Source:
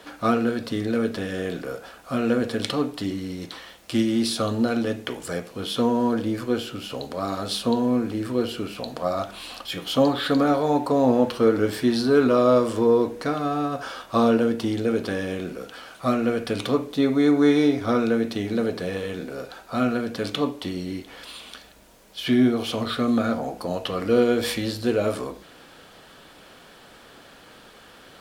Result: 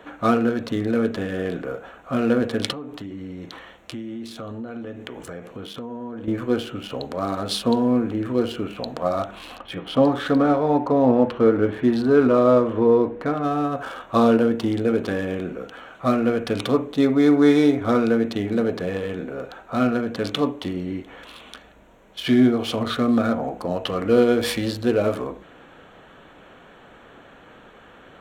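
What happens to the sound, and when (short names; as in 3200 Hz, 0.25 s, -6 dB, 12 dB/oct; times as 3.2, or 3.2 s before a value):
2.72–6.28 compressor, threshold -33 dBFS
9.57–13.44 air absorption 220 m
whole clip: Wiener smoothing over 9 samples; gain +2.5 dB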